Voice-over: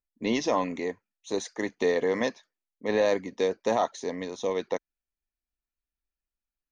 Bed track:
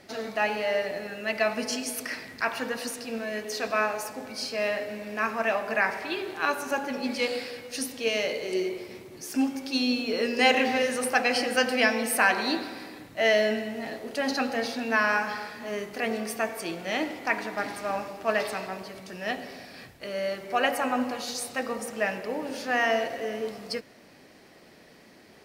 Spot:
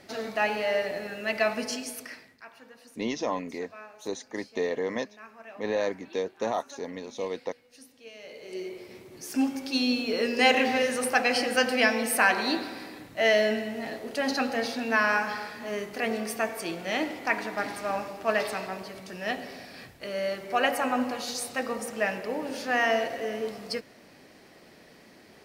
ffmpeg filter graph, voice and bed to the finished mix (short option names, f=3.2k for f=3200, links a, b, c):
-filter_complex "[0:a]adelay=2750,volume=-4dB[a];[1:a]volume=20dB,afade=t=out:st=1.48:d=0.91:silence=0.1,afade=t=in:st=8.19:d=1.27:silence=0.1[b];[a][b]amix=inputs=2:normalize=0"